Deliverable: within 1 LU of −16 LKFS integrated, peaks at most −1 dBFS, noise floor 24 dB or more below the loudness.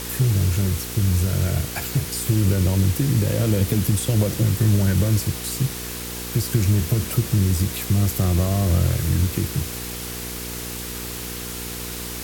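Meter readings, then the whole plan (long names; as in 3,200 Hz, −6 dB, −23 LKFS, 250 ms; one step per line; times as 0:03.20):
mains hum 60 Hz; hum harmonics up to 480 Hz; level of the hum −33 dBFS; background noise floor −31 dBFS; target noise floor −46 dBFS; integrated loudness −22.0 LKFS; sample peak −7.5 dBFS; target loudness −16.0 LKFS
→ hum removal 60 Hz, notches 8
broadband denoise 15 dB, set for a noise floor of −31 dBFS
level +6 dB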